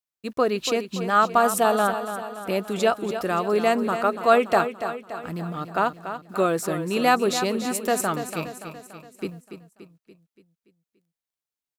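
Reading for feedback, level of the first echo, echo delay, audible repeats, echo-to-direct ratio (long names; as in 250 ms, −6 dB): 53%, −10.0 dB, 287 ms, 5, −8.5 dB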